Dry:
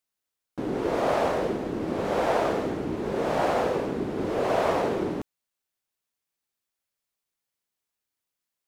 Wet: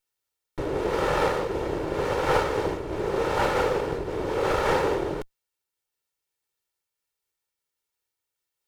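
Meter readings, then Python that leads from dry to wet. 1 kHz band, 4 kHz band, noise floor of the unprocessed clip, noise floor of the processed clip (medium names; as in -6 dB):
+1.0 dB, +3.5 dB, under -85 dBFS, under -85 dBFS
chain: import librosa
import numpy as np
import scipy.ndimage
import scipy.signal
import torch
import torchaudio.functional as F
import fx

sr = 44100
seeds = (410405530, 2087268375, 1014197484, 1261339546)

y = fx.lower_of_two(x, sr, delay_ms=2.2)
y = fx.am_noise(y, sr, seeds[0], hz=5.7, depth_pct=50)
y = y * librosa.db_to_amplitude(4.5)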